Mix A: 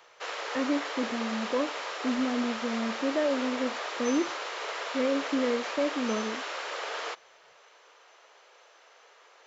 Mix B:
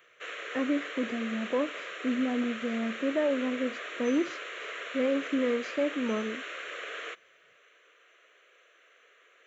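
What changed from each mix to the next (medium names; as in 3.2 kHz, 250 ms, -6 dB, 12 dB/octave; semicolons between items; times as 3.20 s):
speech: add high-pass 70 Hz; background: add static phaser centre 2.1 kHz, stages 4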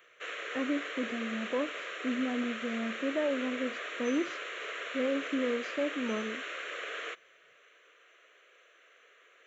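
speech -3.5 dB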